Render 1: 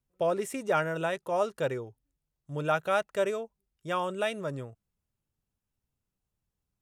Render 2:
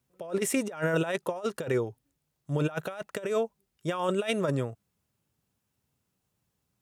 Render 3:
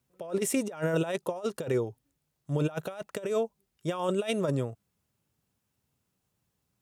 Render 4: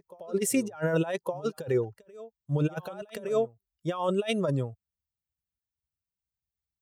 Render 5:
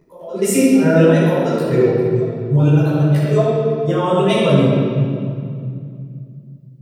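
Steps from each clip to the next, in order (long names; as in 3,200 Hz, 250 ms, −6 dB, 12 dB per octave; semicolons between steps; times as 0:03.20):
compressor whose output falls as the input rises −33 dBFS, ratio −0.5; high-pass filter 100 Hz 12 dB per octave; level +5 dB
dynamic equaliser 1,700 Hz, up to −6 dB, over −46 dBFS, Q 1.1
spectral dynamics exaggerated over time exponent 1.5; backwards echo 1,165 ms −18.5 dB; level +3.5 dB
convolution reverb RT60 2.4 s, pre-delay 14 ms, DRR −12.5 dB; level −2 dB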